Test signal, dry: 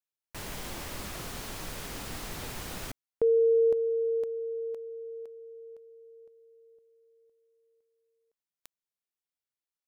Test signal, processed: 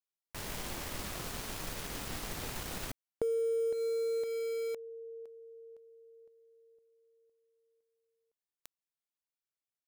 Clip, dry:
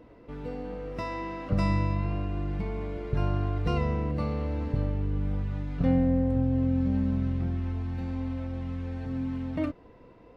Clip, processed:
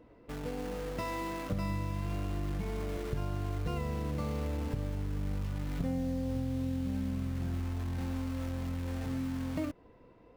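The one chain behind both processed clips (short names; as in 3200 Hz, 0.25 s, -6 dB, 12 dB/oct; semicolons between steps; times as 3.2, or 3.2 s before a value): in parallel at -4 dB: bit-crush 6-bit; on the sum: compressor 6:1, threshold -25 dBFS; gain -5.5 dB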